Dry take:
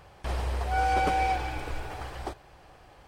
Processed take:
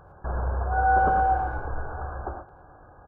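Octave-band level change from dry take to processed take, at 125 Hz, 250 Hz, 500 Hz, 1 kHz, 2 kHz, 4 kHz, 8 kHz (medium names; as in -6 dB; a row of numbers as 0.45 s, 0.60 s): +3.5 dB, +0.5 dB, +3.0 dB, +5.0 dB, +3.5 dB, under -25 dB, under -30 dB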